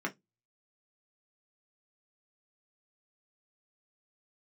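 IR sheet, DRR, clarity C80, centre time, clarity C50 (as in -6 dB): -0.5 dB, 35.5 dB, 9 ms, 22.0 dB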